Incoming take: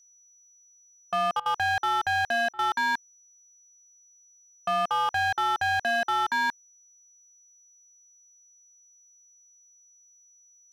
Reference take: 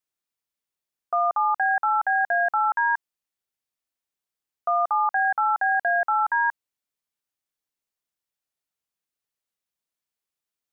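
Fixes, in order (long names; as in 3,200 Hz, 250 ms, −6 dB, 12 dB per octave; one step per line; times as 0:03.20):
clipped peaks rebuilt −22.5 dBFS
notch filter 5,900 Hz, Q 30
repair the gap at 0:01.40/0:02.53, 57 ms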